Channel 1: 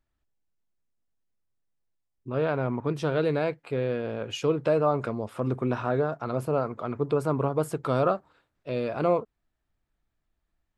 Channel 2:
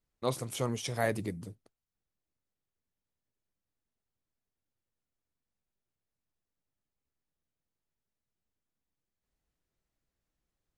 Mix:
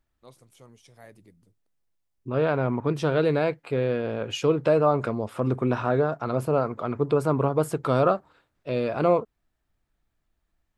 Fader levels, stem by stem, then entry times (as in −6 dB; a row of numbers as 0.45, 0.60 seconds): +3.0, −19.0 decibels; 0.00, 0.00 seconds